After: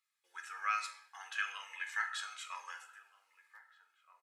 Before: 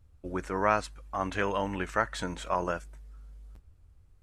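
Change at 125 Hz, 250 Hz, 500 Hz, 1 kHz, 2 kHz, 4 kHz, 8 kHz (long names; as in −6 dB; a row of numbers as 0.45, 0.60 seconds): below −40 dB, below −40 dB, −35.5 dB, −10.5 dB, −3.0 dB, −2.0 dB, −3.0 dB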